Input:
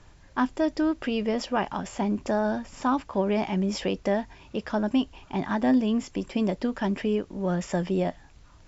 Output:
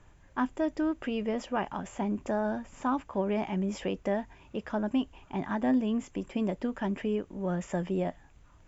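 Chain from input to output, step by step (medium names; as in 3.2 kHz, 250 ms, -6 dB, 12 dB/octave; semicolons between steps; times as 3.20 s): peaking EQ 4.4 kHz -10 dB 0.59 oct; band-stop 5.5 kHz, Q 12; trim -4.5 dB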